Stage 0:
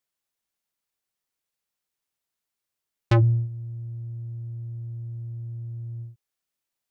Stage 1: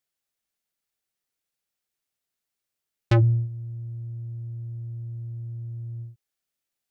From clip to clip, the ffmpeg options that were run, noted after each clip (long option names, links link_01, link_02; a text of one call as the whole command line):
ffmpeg -i in.wav -af "equalizer=frequency=1000:width=3.6:gain=-5" out.wav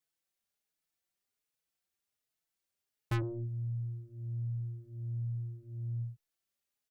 ffmpeg -i in.wav -filter_complex "[0:a]aeval=exprs='(tanh(17.8*val(0)+0.15)-tanh(0.15))/17.8':channel_layout=same,asplit=2[link_01][link_02];[link_02]adelay=4.2,afreqshift=1.3[link_03];[link_01][link_03]amix=inputs=2:normalize=1" out.wav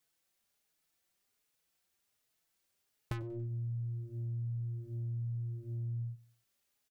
ffmpeg -i in.wav -af "acompressor=threshold=-44dB:ratio=8,aecho=1:1:94|188|282:0.0668|0.0334|0.0167,volume=7.5dB" out.wav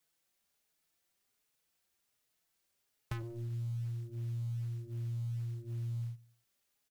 ffmpeg -i in.wav -filter_complex "[0:a]acrossover=split=190|650[link_01][link_02][link_03];[link_02]alimiter=level_in=22dB:limit=-24dB:level=0:latency=1,volume=-22dB[link_04];[link_01][link_04][link_03]amix=inputs=3:normalize=0,acrusher=bits=7:mode=log:mix=0:aa=0.000001" out.wav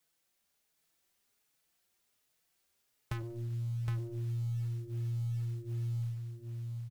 ffmpeg -i in.wav -af "aecho=1:1:766:0.631,volume=1.5dB" out.wav